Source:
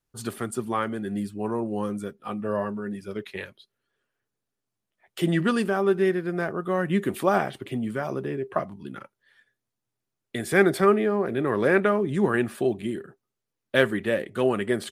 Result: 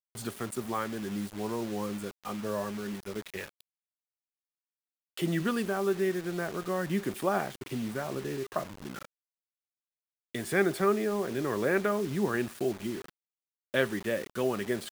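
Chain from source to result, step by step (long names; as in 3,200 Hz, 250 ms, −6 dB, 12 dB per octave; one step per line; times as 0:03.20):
in parallel at −2.5 dB: downward compressor 6 to 1, threshold −32 dBFS, peak gain reduction 18 dB
on the sum: bit reduction 6 bits
level −8 dB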